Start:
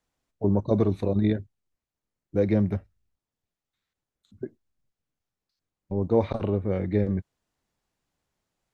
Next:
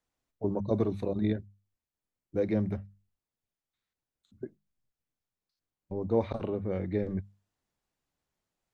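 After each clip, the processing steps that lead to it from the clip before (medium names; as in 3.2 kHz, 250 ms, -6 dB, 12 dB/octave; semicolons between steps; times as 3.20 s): hum notches 50/100/150/200 Hz; trim -5 dB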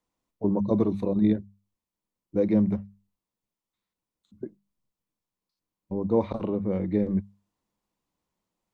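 graphic EQ with 31 bands 200 Hz +10 dB, 315 Hz +6 dB, 500 Hz +4 dB, 1 kHz +8 dB, 1.6 kHz -4 dB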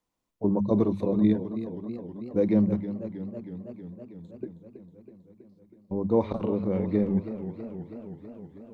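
modulated delay 321 ms, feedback 72%, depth 106 cents, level -12 dB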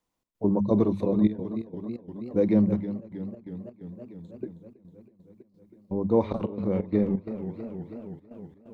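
trance gate "xx.xxxxxxxx.xx." 130 bpm -12 dB; trim +1 dB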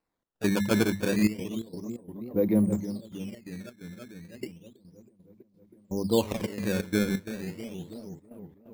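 decimation with a swept rate 13×, swing 160% 0.32 Hz; trim -2 dB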